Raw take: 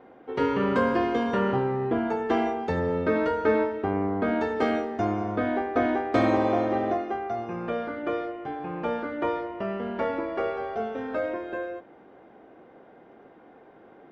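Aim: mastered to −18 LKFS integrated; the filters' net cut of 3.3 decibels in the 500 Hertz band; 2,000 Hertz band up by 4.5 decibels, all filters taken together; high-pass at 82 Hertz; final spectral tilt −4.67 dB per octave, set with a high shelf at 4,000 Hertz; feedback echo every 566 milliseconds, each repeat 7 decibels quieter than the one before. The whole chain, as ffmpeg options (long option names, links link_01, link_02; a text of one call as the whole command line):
ffmpeg -i in.wav -af "highpass=82,equalizer=frequency=500:width_type=o:gain=-4.5,equalizer=frequency=2000:width_type=o:gain=7,highshelf=frequency=4000:gain=-4.5,aecho=1:1:566|1132|1698|2264|2830:0.447|0.201|0.0905|0.0407|0.0183,volume=9.5dB" out.wav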